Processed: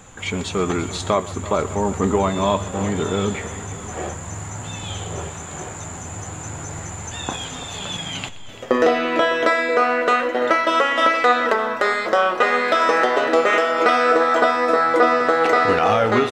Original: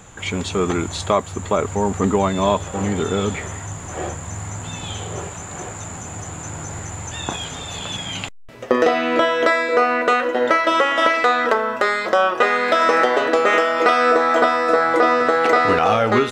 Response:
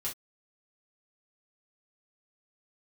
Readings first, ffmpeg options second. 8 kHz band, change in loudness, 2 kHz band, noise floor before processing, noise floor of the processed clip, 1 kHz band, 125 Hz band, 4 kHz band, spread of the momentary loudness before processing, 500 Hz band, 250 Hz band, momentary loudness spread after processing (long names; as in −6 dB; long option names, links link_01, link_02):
−1.0 dB, −0.5 dB, −0.5 dB, −34 dBFS, −33 dBFS, −0.5 dB, −1.0 dB, −0.5 dB, 15 LU, −0.5 dB, −1.0 dB, 15 LU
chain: -af "flanger=delay=3.8:depth=9.5:regen=76:speed=0.27:shape=sinusoidal,aecho=1:1:124|338|605:0.112|0.15|0.126,volume=3.5dB"